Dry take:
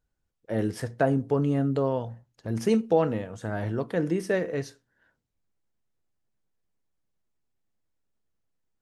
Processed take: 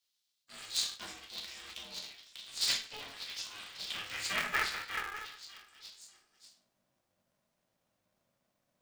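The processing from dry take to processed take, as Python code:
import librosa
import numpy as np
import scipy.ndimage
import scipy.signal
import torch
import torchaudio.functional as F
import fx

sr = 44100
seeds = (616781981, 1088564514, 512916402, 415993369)

p1 = scipy.signal.sosfilt(scipy.signal.bessel(2, 290.0, 'highpass', norm='mag', fs=sr, output='sos'), x)
p2 = p1 + fx.echo_stepped(p1, sr, ms=593, hz=3400.0, octaves=0.7, feedback_pct=70, wet_db=-6, dry=0)
p3 = fx.room_shoebox(p2, sr, seeds[0], volume_m3=110.0, walls='mixed', distance_m=1.3)
p4 = fx.formant_shift(p3, sr, semitones=-4)
p5 = fx.filter_sweep_highpass(p4, sr, from_hz=3900.0, to_hz=390.0, start_s=3.66, end_s=6.81, q=3.1)
p6 = p5 * np.sign(np.sin(2.0 * np.pi * 210.0 * np.arange(len(p5)) / sr))
y = p6 * 10.0 ** (2.5 / 20.0)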